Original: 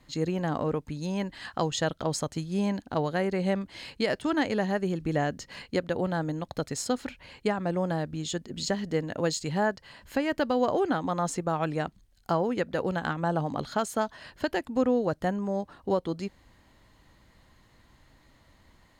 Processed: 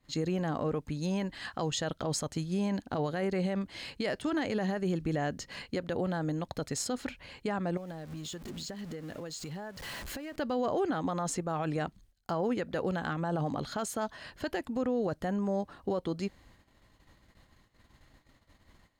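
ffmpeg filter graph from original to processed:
-filter_complex "[0:a]asettb=1/sr,asplit=3[s0][s1][s2];[s0]atrim=end=7.774[s3];[s1]atrim=start=7.77:end=10.36,asetpts=PTS-STARTPTS,afade=t=in:d=0.004:c=qsin,afade=t=out:st=2.586:d=0.004:c=qsin,aeval=exprs='val(0)+0.5*0.0126*sgn(val(0))':c=same,acompressor=threshold=0.0126:ratio=6:attack=3.2:release=140:knee=1:detection=peak[s4];[s2]atrim=start=10.356[s5];[s3][s4]acrossfade=d=0.004:c1=hsin:c2=qsin[s6];[s6][s5]acrossfade=d=0.004:c1=qsin:c2=hsin,bandreject=f=930:w=19,agate=range=0.2:threshold=0.00126:ratio=16:detection=peak,alimiter=limit=0.075:level=0:latency=1:release=29"

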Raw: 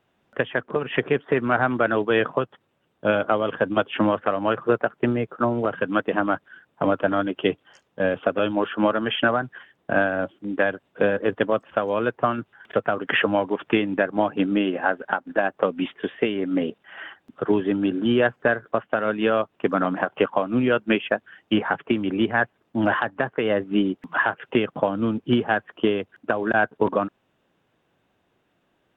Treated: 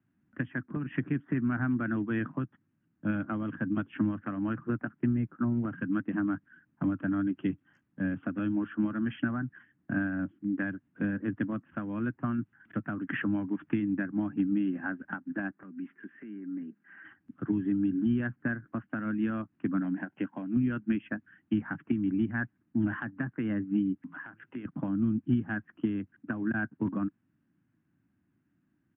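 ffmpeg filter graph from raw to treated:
-filter_complex "[0:a]asettb=1/sr,asplit=3[s0][s1][s2];[s0]atrim=end=15.514[s3];[s1]atrim=start=15.51:end=17.05,asetpts=PTS-STARTPTS,afade=t=in:d=0.004:c=qsin,afade=t=out:st=1.536:d=0.004:c=qsin,highpass=210,equalizer=f=310:t=q:w=4:g=4,equalizer=f=560:t=q:w=4:g=-4,equalizer=f=860:t=q:w=4:g=-3,equalizer=f=1600:t=q:w=4:g=5,lowpass=f=2600:w=0.5412,lowpass=f=2600:w=1.3066,aecho=1:1:5:0.34,atrim=end_sample=67914,acompressor=threshold=0.0141:ratio=3:attack=3.2:release=140:knee=1:detection=peak[s4];[s2]atrim=start=17.046[s5];[s3][s4]acrossfade=d=0.004:c1=hsin:c2=qsin[s6];[s6][s5]acrossfade=d=0.004:c1=qsin:c2=hsin,asettb=1/sr,asplit=3[s7][s8][s9];[s7]atrim=end=19.804[s10];[s8]atrim=start=19.8:end=20.56,asetpts=PTS-STARTPTS,afade=t=in:d=0.004:c=qsin,afade=t=out:st=0.756:d=0.004:c=qsin,highpass=f=260:p=1,equalizer=f=1200:w=4.7:g=-13.5[s11];[s9]atrim=start=20.556[s12];[s10][s11]acrossfade=d=0.004:c1=hsin:c2=qsin[s13];[s13][s12]acrossfade=d=0.004:c1=qsin:c2=hsin,asettb=1/sr,asplit=3[s14][s15][s16];[s14]atrim=end=24.014[s17];[s15]atrim=start=24.01:end=24.65,asetpts=PTS-STARTPTS,afade=t=in:d=0.004:c=qsin,afade=t=out:st=0.636:d=0.004:c=qsin,bass=f=250:g=-6,treble=f=4000:g=1,acompressor=threshold=0.0316:ratio=3:attack=3.2:release=140:knee=1:detection=peak,bandreject=f=55.21:t=h:w=4,bandreject=f=110.42:t=h:w=4,bandreject=f=165.63:t=h:w=4,bandreject=f=220.84:t=h:w=4,bandreject=f=276.05:t=h:w=4,bandreject=f=331.26:t=h:w=4,bandreject=f=386.47:t=h:w=4[s18];[s16]atrim=start=24.646[s19];[s17][s18]acrossfade=d=0.004:c1=hsin:c2=qsin[s20];[s20][s19]acrossfade=d=0.004:c1=qsin:c2=hsin,firequalizer=gain_entry='entry(300,0);entry(430,-25);entry(1600,-10);entry(3600,-28)':delay=0.05:min_phase=1,acrossover=split=140|3000[s21][s22][s23];[s22]acompressor=threshold=0.0501:ratio=6[s24];[s21][s24][s23]amix=inputs=3:normalize=0,highpass=72"

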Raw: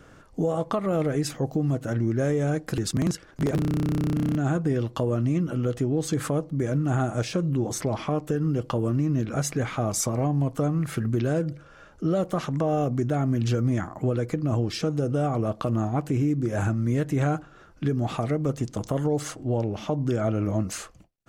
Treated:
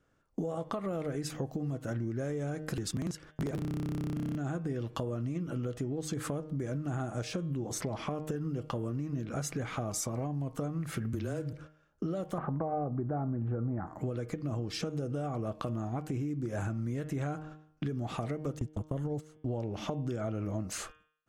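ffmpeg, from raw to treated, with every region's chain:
-filter_complex "[0:a]asettb=1/sr,asplit=3[s0][s1][s2];[s0]atrim=end=11.134[s3];[s1]atrim=start=11.13:end=11.53,asetpts=PTS-STARTPTS,afade=t=in:d=0.004:c=qsin,afade=t=out:st=0.396:d=0.004:c=qsin,highshelf=f=8500:g=11.5,aeval=exprs='sgn(val(0))*max(abs(val(0))-0.00237,0)':c=same,afreqshift=-18[s4];[s2]atrim=start=11.526[s5];[s3][s4]acrossfade=d=0.004:c1=hsin:c2=qsin[s6];[s6][s5]acrossfade=d=0.004:c1=qsin:c2=hsin,asettb=1/sr,asplit=3[s7][s8][s9];[s7]atrim=end=12.384[s10];[s8]atrim=start=12.38:end=13.87,asetpts=PTS-STARTPTS,afade=t=in:d=0.004:c=qsin,afade=t=out:st=1.486:d=0.004:c=qsin,lowpass=f=1400:w=0.5412,lowpass=f=1400:w=1.3066,equalizer=f=800:t=o:w=0.27:g=7.5,acontrast=64[s11];[s9]atrim=start=13.866[s12];[s10][s11]acrossfade=d=0.004:c1=hsin:c2=qsin[s13];[s13][s12]acrossfade=d=0.004:c1=qsin:c2=hsin,asettb=1/sr,asplit=3[s14][s15][s16];[s14]atrim=end=18.594[s17];[s15]atrim=start=18.59:end=19.44,asetpts=PTS-STARTPTS,afade=t=in:d=0.004:c=qsin,afade=t=out:st=0.846:d=0.004:c=qsin,agate=range=0.0794:threshold=0.0316:ratio=16:release=100:detection=peak,lowshelf=f=160:g=10.5,bandreject=f=4900:w=26[s18];[s16]atrim=start=19.436[s19];[s17][s18]acrossfade=d=0.004:c1=hsin:c2=qsin[s20];[s20][s19]acrossfade=d=0.004:c1=qsin:c2=hsin,agate=range=0.0708:threshold=0.00631:ratio=16:detection=peak,bandreject=f=154:t=h:w=4,bandreject=f=308:t=h:w=4,bandreject=f=462:t=h:w=4,bandreject=f=616:t=h:w=4,bandreject=f=770:t=h:w=4,bandreject=f=924:t=h:w=4,bandreject=f=1078:t=h:w=4,bandreject=f=1232:t=h:w=4,bandreject=f=1386:t=h:w=4,bandreject=f=1540:t=h:w=4,bandreject=f=1694:t=h:w=4,bandreject=f=1848:t=h:w=4,bandreject=f=2002:t=h:w=4,bandreject=f=2156:t=h:w=4,bandreject=f=2310:t=h:w=4,bandreject=f=2464:t=h:w=4,bandreject=f=2618:t=h:w=4,bandreject=f=2772:t=h:w=4,bandreject=f=2926:t=h:w=4,bandreject=f=3080:t=h:w=4,bandreject=f=3234:t=h:w=4,bandreject=f=3388:t=h:w=4,bandreject=f=3542:t=h:w=4,acompressor=threshold=0.02:ratio=6,volume=1.19"

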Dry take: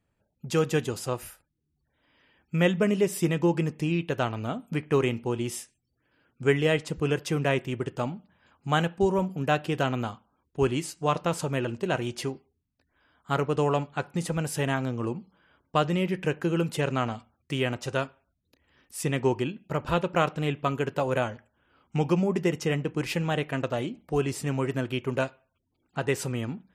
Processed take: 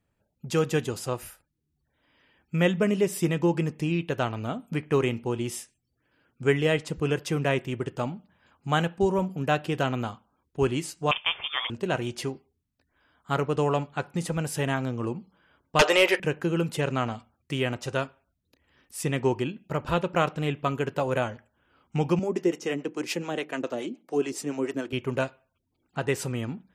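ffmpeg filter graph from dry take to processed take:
-filter_complex "[0:a]asettb=1/sr,asplit=3[s0][s1][s2];[s0]atrim=end=11.114[s3];[s1]atrim=start=11.11:end=11.7,asetpts=PTS-STARTPTS,afade=t=in:d=0.004:c=qsin,afade=t=out:st=0.586:d=0.004:c=qsin,highpass=f=1200:p=1,lowpass=f=3100:t=q:w=0.5098,lowpass=f=3100:t=q:w=0.6013,lowpass=f=3100:t=q:w=0.9,lowpass=f=3100:t=q:w=2.563,afreqshift=-3700,acontrast=66[s4];[s2]atrim=start=11.696[s5];[s3][s4]acrossfade=d=0.004:c1=hsin:c2=qsin[s6];[s6][s5]acrossfade=d=0.004:c1=qsin:c2=hsin,asettb=1/sr,asplit=3[s7][s8][s9];[s7]atrim=end=15.794[s10];[s8]atrim=start=15.79:end=16.2,asetpts=PTS-STARTPTS,afade=t=in:d=0.004:c=qsin,afade=t=out:st=0.406:d=0.004:c=qsin,highpass=f=490:w=0.5412,highpass=f=490:w=1.3066,aeval=exprs='0.266*sin(PI/2*3.98*val(0)/0.266)':c=same[s11];[s9]atrim=start=16.196[s12];[s10][s11]acrossfade=d=0.004:c1=hsin:c2=qsin[s13];[s13][s12]acrossfade=d=0.004:c1=qsin:c2=hsin,asettb=1/sr,asplit=3[s14][s15][s16];[s14]atrim=end=22.194[s17];[s15]atrim=start=22.19:end=24.93,asetpts=PTS-STARTPTS,afade=t=in:d=0.004:c=qsin,afade=t=out:st=2.736:d=0.004:c=qsin,equalizer=f=6200:t=o:w=0.72:g=6.5,acrossover=split=510[s18][s19];[s18]aeval=exprs='val(0)*(1-0.7/2+0.7/2*cos(2*PI*7*n/s))':c=same[s20];[s19]aeval=exprs='val(0)*(1-0.7/2-0.7/2*cos(2*PI*7*n/s))':c=same[s21];[s20][s21]amix=inputs=2:normalize=0,highpass=f=290:t=q:w=1.7[s22];[s16]atrim=start=24.926[s23];[s17][s22]acrossfade=d=0.004:c1=hsin:c2=qsin[s24];[s24][s23]acrossfade=d=0.004:c1=qsin:c2=hsin"

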